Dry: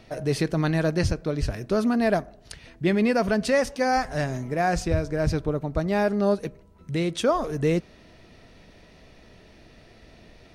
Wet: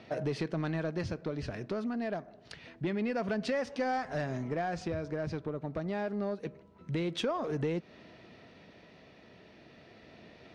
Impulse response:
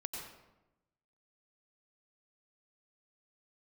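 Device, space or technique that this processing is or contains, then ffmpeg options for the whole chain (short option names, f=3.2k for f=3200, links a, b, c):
AM radio: -af "highpass=130,lowpass=4.1k,acompressor=threshold=-28dB:ratio=6,asoftclip=type=tanh:threshold=-22.5dB,tremolo=f=0.27:d=0.29"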